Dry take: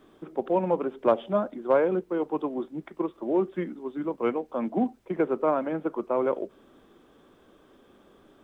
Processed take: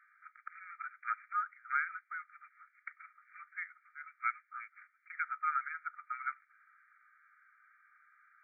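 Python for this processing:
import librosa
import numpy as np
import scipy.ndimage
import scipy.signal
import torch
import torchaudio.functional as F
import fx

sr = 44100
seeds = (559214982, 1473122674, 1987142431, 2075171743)

y = fx.brickwall_bandpass(x, sr, low_hz=1200.0, high_hz=2400.0)
y = F.gain(torch.from_numpy(y), 4.0).numpy()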